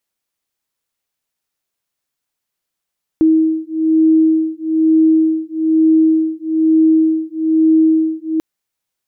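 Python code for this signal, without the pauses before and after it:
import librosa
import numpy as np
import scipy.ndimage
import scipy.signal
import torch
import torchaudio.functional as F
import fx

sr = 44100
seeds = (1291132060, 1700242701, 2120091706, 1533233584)

y = fx.two_tone_beats(sr, length_s=5.19, hz=318.0, beat_hz=1.1, level_db=-13.0)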